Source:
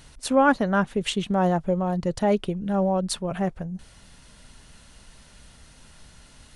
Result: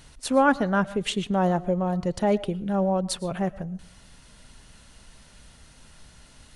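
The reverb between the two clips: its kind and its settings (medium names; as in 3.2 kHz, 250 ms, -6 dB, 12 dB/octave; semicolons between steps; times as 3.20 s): algorithmic reverb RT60 0.41 s, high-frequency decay 0.45×, pre-delay 75 ms, DRR 18 dB; trim -1 dB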